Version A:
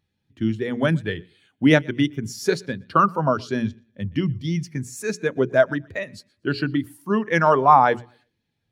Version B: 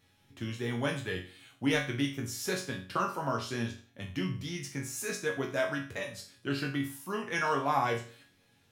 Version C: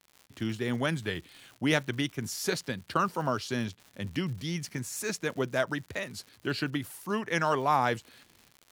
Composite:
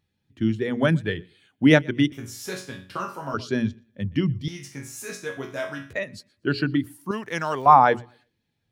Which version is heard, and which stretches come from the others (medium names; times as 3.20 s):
A
2.12–3.34 s: from B
4.48–5.93 s: from B
7.11–7.66 s: from C